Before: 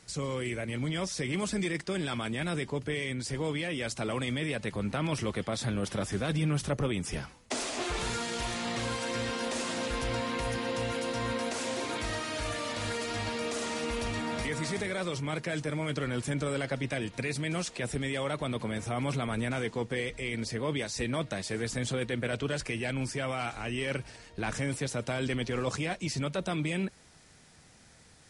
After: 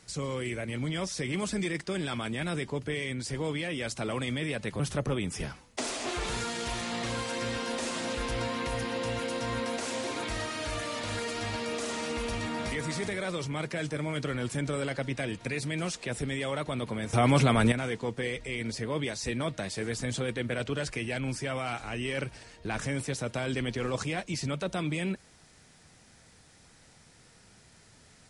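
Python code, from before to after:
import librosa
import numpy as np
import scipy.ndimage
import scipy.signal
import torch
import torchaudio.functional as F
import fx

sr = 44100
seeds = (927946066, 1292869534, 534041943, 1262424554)

y = fx.edit(x, sr, fx.cut(start_s=4.8, length_s=1.73),
    fx.clip_gain(start_s=18.86, length_s=0.59, db=9.0), tone=tone)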